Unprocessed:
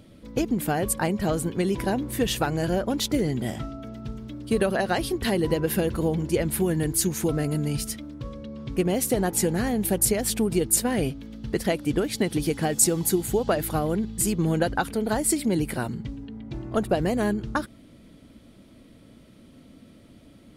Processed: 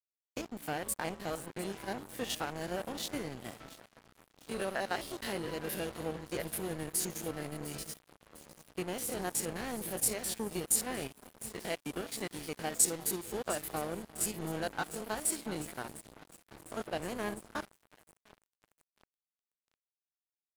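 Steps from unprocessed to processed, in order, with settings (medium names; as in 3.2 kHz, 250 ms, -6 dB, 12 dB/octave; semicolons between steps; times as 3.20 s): spectrogram pixelated in time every 50 ms; bass shelf 380 Hz -11 dB; echo whose repeats swap between lows and highs 352 ms, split 970 Hz, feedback 86%, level -12.5 dB; crossover distortion -37 dBFS; trim -3.5 dB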